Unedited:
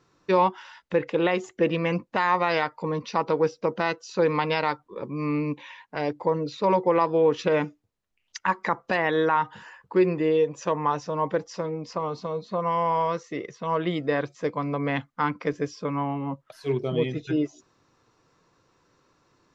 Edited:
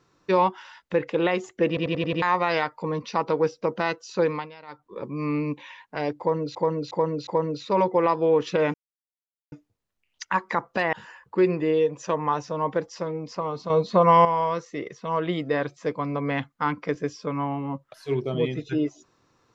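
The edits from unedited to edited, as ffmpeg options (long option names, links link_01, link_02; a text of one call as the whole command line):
ffmpeg -i in.wav -filter_complex "[0:a]asplit=16[link_01][link_02][link_03][link_04][link_05][link_06][link_07][link_08][link_09][link_10][link_11][link_12][link_13][link_14][link_15][link_16];[link_01]atrim=end=1.772[link_17];[link_02]atrim=start=1.678:end=1.772[link_18];[link_03]atrim=start=1.678:end=1.772[link_19];[link_04]atrim=start=1.678:end=1.772[link_20];[link_05]atrim=start=1.678:end=1.772[link_21];[link_06]atrim=start=1.678:end=1.772[link_22];[link_07]atrim=start=2.218:end=4.51,asetpts=PTS-STARTPTS,afade=type=out:start_time=2.002:duration=0.29:silence=0.0944061[link_23];[link_08]atrim=start=4.51:end=4.67,asetpts=PTS-STARTPTS,volume=-20.5dB[link_24];[link_09]atrim=start=4.67:end=6.552,asetpts=PTS-STARTPTS,afade=type=in:duration=0.29:silence=0.0944061[link_25];[link_10]atrim=start=6.188:end=6.552[link_26];[link_11]atrim=start=6.188:end=6.552[link_27];[link_12]atrim=start=6.188:end=7.66,asetpts=PTS-STARTPTS,afade=type=out:start_time=1.468:duration=0.004:curve=hsin,apad=pad_dur=0.78[link_28];[link_13]atrim=start=7.66:end=9.072,asetpts=PTS-STARTPTS,afade=type=in:duration=0.004:curve=hsin[link_29];[link_14]atrim=start=9.508:end=12.282[link_30];[link_15]atrim=start=12.278:end=12.832,asetpts=PTS-STARTPTS,volume=9.5dB[link_31];[link_16]atrim=start=12.828[link_32];[link_17][link_18]acrossfade=duration=0.004:curve1=hsin:curve2=hsin[link_33];[link_33][link_19]acrossfade=duration=0.004:curve1=hsin:curve2=hsin[link_34];[link_34][link_20]acrossfade=duration=0.004:curve1=hsin:curve2=hsin[link_35];[link_35][link_21]acrossfade=duration=0.004:curve1=hsin:curve2=hsin[link_36];[link_36][link_22]acrossfade=duration=0.004:curve1=hsin:curve2=hsin[link_37];[link_23][link_24][link_25]concat=n=3:v=0:a=1[link_38];[link_37][link_38]acrossfade=duration=0.004:curve1=hsin:curve2=hsin[link_39];[link_39][link_26]acrossfade=duration=0.004:curve1=hsin:curve2=hsin[link_40];[link_40][link_27]acrossfade=duration=0.004:curve1=hsin:curve2=hsin[link_41];[link_28][link_29]concat=n=2:v=0:a=1[link_42];[link_41][link_42]acrossfade=duration=0.004:curve1=hsin:curve2=hsin[link_43];[link_43][link_30]acrossfade=duration=0.004:curve1=hsin:curve2=hsin[link_44];[link_44][link_31]acrossfade=duration=0.004:curve1=hsin:curve2=hsin[link_45];[link_45][link_32]acrossfade=duration=0.004:curve1=hsin:curve2=hsin" out.wav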